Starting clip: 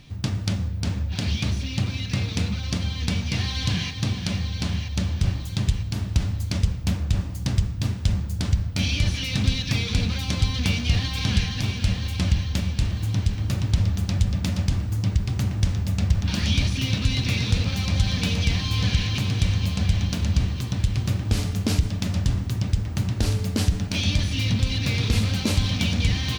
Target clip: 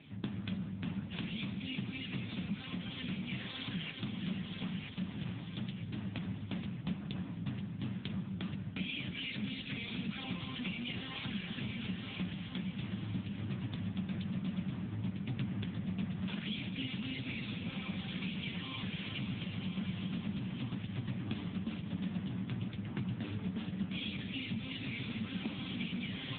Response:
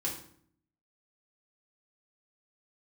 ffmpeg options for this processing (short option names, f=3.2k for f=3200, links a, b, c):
-af "highpass=f=140:w=0.5412,highpass=f=140:w=1.3066,equalizer=f=470:t=o:w=0.6:g=-9,acompressor=threshold=-32dB:ratio=8" -ar 8000 -c:a libopencore_amrnb -b:a 6700